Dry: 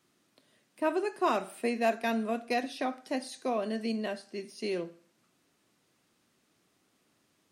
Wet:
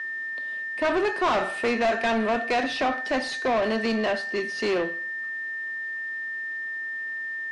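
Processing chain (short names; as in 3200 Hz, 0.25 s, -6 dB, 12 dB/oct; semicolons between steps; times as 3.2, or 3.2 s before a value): whine 1800 Hz -47 dBFS; overdrive pedal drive 26 dB, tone 2700 Hz, clips at -15.5 dBFS; Bessel low-pass 6500 Hz, order 4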